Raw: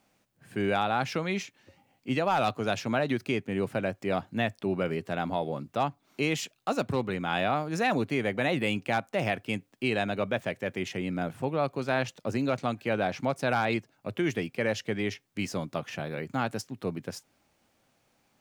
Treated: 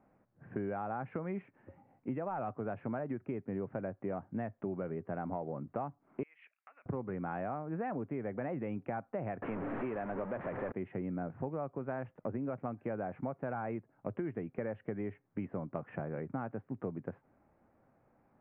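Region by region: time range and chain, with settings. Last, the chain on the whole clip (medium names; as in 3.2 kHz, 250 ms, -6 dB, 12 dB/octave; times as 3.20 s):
6.23–6.86 s: treble shelf 3.2 kHz -10.5 dB + compression 5:1, threshold -41 dBFS + resonant high-pass 2.3 kHz, resonance Q 2.8
9.42–10.72 s: one-bit delta coder 32 kbps, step -25 dBFS + peaking EQ 61 Hz -14 dB 2 oct
whole clip: Bessel low-pass 1.1 kHz, order 8; compression 6:1, threshold -38 dBFS; trim +3 dB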